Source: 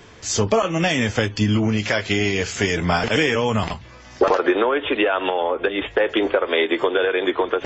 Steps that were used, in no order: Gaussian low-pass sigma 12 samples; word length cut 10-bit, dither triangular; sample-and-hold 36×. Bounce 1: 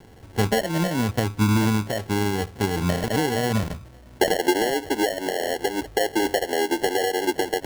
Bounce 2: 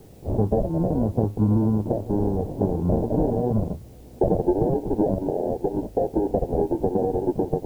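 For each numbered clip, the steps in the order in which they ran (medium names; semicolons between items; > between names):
Gaussian low-pass > word length cut > sample-and-hold; sample-and-hold > Gaussian low-pass > word length cut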